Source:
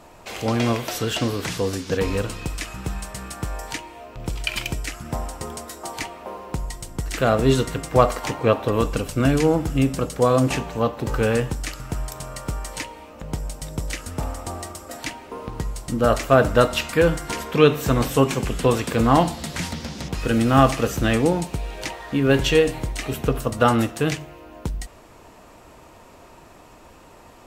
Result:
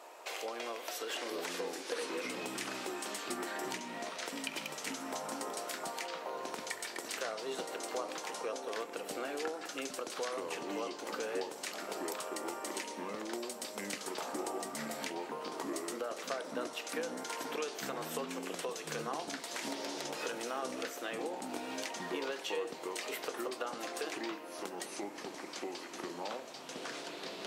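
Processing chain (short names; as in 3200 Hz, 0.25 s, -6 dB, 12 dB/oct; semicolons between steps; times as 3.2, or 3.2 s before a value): HPF 400 Hz 24 dB/oct; compressor 6:1, threshold -34 dBFS, peak gain reduction 22 dB; echoes that change speed 0.743 s, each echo -5 st, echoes 2; gain -4 dB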